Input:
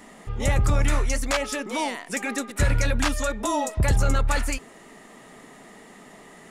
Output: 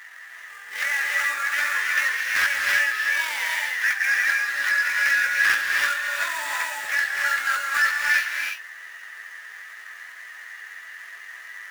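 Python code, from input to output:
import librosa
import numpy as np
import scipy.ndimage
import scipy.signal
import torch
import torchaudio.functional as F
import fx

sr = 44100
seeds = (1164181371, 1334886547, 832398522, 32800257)

y = fx.dmg_noise_colour(x, sr, seeds[0], colour='brown', level_db=-45.0)
y = fx.stretch_grains(y, sr, factor=1.8, grain_ms=46.0)
y = fx.sample_hold(y, sr, seeds[1], rate_hz=8300.0, jitter_pct=20)
y = fx.highpass_res(y, sr, hz=1700.0, q=6.3)
y = 10.0 ** (-16.0 / 20.0) * np.tanh(y / 10.0 ** (-16.0 / 20.0))
y = fx.rev_gated(y, sr, seeds[2], gate_ms=360, shape='rising', drr_db=-0.5)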